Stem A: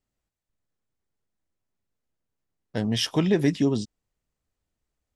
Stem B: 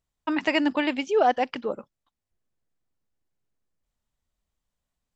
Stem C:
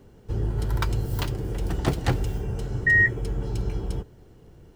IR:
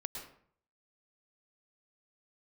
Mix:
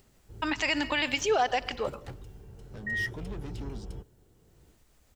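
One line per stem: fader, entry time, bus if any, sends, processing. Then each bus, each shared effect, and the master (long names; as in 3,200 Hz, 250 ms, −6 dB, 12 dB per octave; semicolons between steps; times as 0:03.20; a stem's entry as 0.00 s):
−13.5 dB, 0.00 s, no send, upward compression, threshold −24 dBFS; soft clipping −25.5 dBFS, distortion −7 dB
0.0 dB, 0.15 s, send −13 dB, spectral tilt +4 dB per octave
0:02.51 −20 dB → 0:03.11 −11.5 dB, 0.00 s, no send, no processing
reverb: on, RT60 0.55 s, pre-delay 101 ms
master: brickwall limiter −16.5 dBFS, peak gain reduction 10 dB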